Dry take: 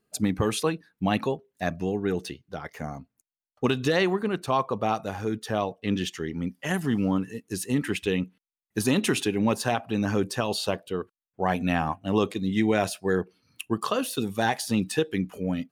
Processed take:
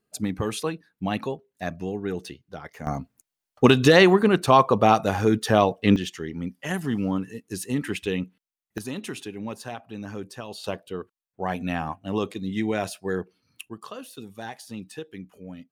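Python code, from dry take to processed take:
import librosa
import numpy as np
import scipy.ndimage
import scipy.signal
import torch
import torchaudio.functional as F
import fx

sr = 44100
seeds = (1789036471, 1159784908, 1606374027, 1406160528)

y = fx.gain(x, sr, db=fx.steps((0.0, -2.5), (2.87, 8.5), (5.96, -1.0), (8.78, -10.0), (10.64, -3.0), (13.69, -12.0)))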